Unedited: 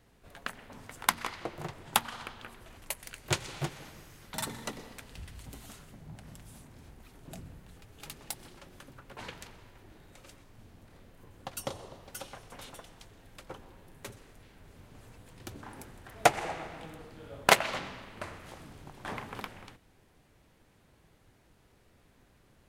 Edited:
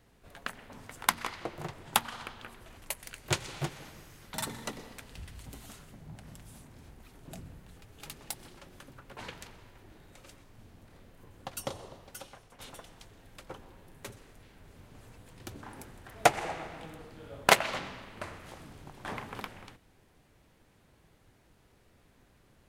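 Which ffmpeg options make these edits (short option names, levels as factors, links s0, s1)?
-filter_complex "[0:a]asplit=2[s0][s1];[s0]atrim=end=12.6,asetpts=PTS-STARTPTS,afade=t=out:st=11.86:d=0.74:silence=0.334965[s2];[s1]atrim=start=12.6,asetpts=PTS-STARTPTS,afade=t=in:d=0.004:c=hsin:silence=0.334965[s3];[s2][s3]concat=n=2:v=0:a=1"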